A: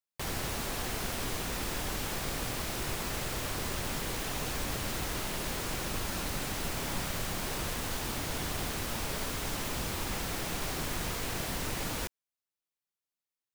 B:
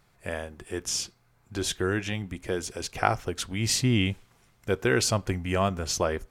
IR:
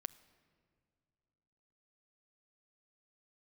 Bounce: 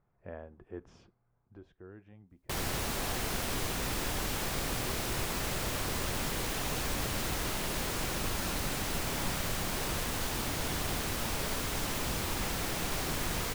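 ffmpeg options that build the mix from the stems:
-filter_complex "[0:a]adelay=2300,volume=1dB[link_01];[1:a]lowpass=1100,volume=-9.5dB,afade=type=out:start_time=1.36:duration=0.26:silence=0.223872[link_02];[link_01][link_02]amix=inputs=2:normalize=0"

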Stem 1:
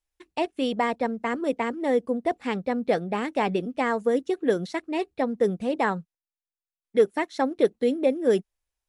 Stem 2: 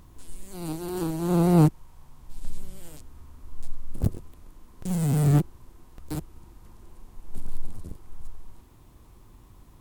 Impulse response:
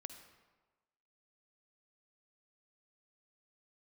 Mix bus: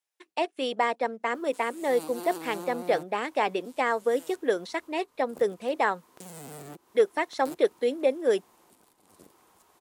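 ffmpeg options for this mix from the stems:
-filter_complex "[0:a]volume=0.5dB[link_01];[1:a]acompressor=threshold=-27dB:ratio=4,alimiter=level_in=1.5dB:limit=-24dB:level=0:latency=1:release=131,volume=-1.5dB,adelay=1350,volume=0.5dB[link_02];[link_01][link_02]amix=inputs=2:normalize=0,highpass=430"

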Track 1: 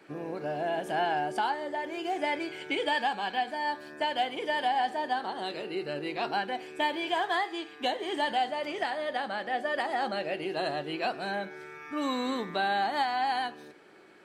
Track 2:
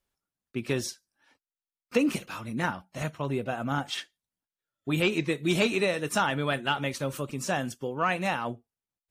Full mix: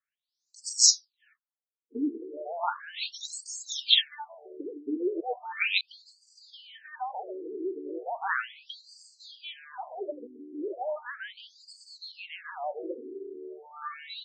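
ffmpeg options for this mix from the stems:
ffmpeg -i stem1.wav -i stem2.wav -filter_complex "[0:a]adynamicequalizer=threshold=0.00447:dfrequency=2600:dqfactor=1.2:tfrequency=2600:tqfactor=1.2:attack=5:release=100:ratio=0.375:range=2:mode=cutabove:tftype=bell,acompressor=threshold=-32dB:ratio=4,adelay=1900,volume=-5dB[link_01];[1:a]lowshelf=frequency=430:gain=-9.5,aexciter=amount=6.2:drive=4.9:freq=3500,volume=0dB,asplit=3[link_02][link_03][link_04];[link_02]atrim=end=5.81,asetpts=PTS-STARTPTS,afade=type=out:start_time=5.806:duration=0.004:curve=hsin[link_05];[link_03]atrim=start=5.81:end=8.21,asetpts=PTS-STARTPTS,volume=0[link_06];[link_04]atrim=start=8.21,asetpts=PTS-STARTPTS,afade=type=in:duration=0.004:curve=hsin[link_07];[link_05][link_06][link_07]concat=n=3:v=0:a=1[link_08];[link_01][link_08]amix=inputs=2:normalize=0,highshelf=frequency=9400:gain=9.5,dynaudnorm=framelen=450:gausssize=5:maxgain=10.5dB,afftfilt=real='re*between(b*sr/1024,310*pow(6200/310,0.5+0.5*sin(2*PI*0.36*pts/sr))/1.41,310*pow(6200/310,0.5+0.5*sin(2*PI*0.36*pts/sr))*1.41)':imag='im*between(b*sr/1024,310*pow(6200/310,0.5+0.5*sin(2*PI*0.36*pts/sr))/1.41,310*pow(6200/310,0.5+0.5*sin(2*PI*0.36*pts/sr))*1.41)':win_size=1024:overlap=0.75" out.wav

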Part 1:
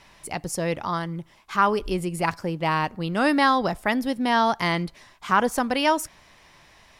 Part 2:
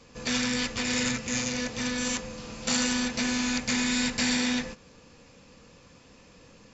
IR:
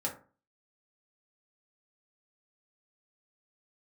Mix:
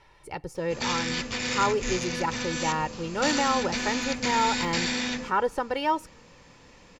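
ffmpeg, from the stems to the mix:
-filter_complex "[0:a]lowpass=frequency=2300:poles=1,aecho=1:1:2.2:0.67,deesser=0.85,volume=-4.5dB[link_01];[1:a]bandreject=frequency=50:width_type=h:width=6,bandreject=frequency=100:width_type=h:width=6,bandreject=frequency=150:width_type=h:width=6,bandreject=frequency=200:width_type=h:width=6,bandreject=frequency=250:width_type=h:width=6,acrossover=split=6800[link_02][link_03];[link_03]acompressor=threshold=-47dB:ratio=4:attack=1:release=60[link_04];[link_02][link_04]amix=inputs=2:normalize=0,adelay=550,volume=0dB[link_05];[link_01][link_05]amix=inputs=2:normalize=0"

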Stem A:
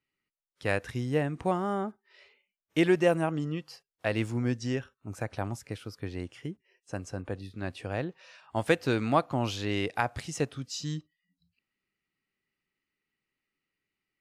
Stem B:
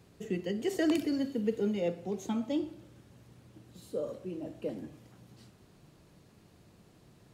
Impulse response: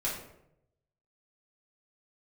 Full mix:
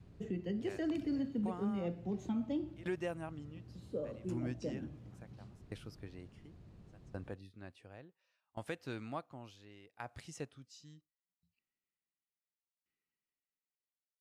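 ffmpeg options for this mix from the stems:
-filter_complex "[0:a]aeval=exprs='val(0)*pow(10,-25*if(lt(mod(0.7*n/s,1),2*abs(0.7)/1000),1-mod(0.7*n/s,1)/(2*abs(0.7)/1000),(mod(0.7*n/s,1)-2*abs(0.7)/1000)/(1-2*abs(0.7)/1000))/20)':channel_layout=same,volume=-7dB[link_01];[1:a]aemphasis=mode=reproduction:type=bsi,volume=-5dB[link_02];[link_01][link_02]amix=inputs=2:normalize=0,adynamicequalizer=threshold=0.00282:dfrequency=460:dqfactor=3.1:tfrequency=460:tqfactor=3.1:attack=5:release=100:ratio=0.375:range=3.5:mode=cutabove:tftype=bell,alimiter=level_in=4.5dB:limit=-24dB:level=0:latency=1:release=292,volume=-4.5dB"

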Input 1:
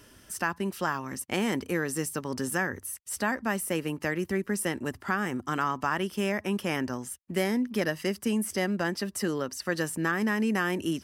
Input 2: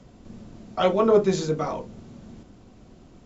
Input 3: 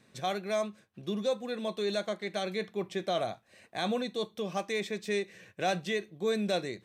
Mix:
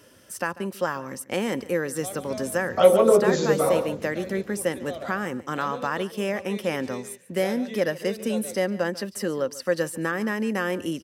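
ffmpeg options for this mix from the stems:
ffmpeg -i stem1.wav -i stem2.wav -i stem3.wav -filter_complex "[0:a]volume=0dB,asplit=2[link_01][link_02];[link_02]volume=-19dB[link_03];[1:a]acompressor=threshold=-21dB:ratio=2,adelay=2000,volume=1.5dB,asplit=2[link_04][link_05];[link_05]volume=-10dB[link_06];[2:a]adelay=1800,volume=-9.5dB,asplit=2[link_07][link_08];[link_08]volume=-7.5dB[link_09];[link_03][link_06][link_09]amix=inputs=3:normalize=0,aecho=0:1:143:1[link_10];[link_01][link_04][link_07][link_10]amix=inputs=4:normalize=0,highpass=94,equalizer=frequency=530:width=5:gain=11.5" out.wav

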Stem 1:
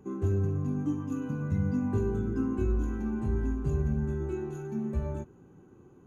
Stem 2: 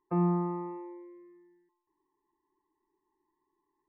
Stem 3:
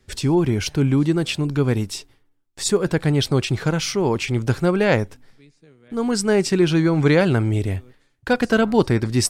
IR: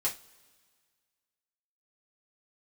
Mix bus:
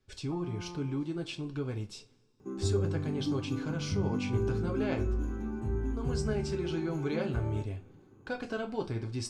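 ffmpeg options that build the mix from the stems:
-filter_complex "[0:a]adelay=2400,volume=-5.5dB,asplit=2[link_01][link_02];[link_02]volume=-11dB[link_03];[1:a]adelay=200,volume=-7.5dB[link_04];[2:a]lowpass=6600,bandreject=frequency=1900:width=6.6,volume=-18dB,asplit=2[link_05][link_06];[link_06]volume=-6dB[link_07];[link_04][link_05]amix=inputs=2:normalize=0,acompressor=threshold=-37dB:ratio=6,volume=0dB[link_08];[3:a]atrim=start_sample=2205[link_09];[link_03][link_07]amix=inputs=2:normalize=0[link_10];[link_10][link_09]afir=irnorm=-1:irlink=0[link_11];[link_01][link_08][link_11]amix=inputs=3:normalize=0"

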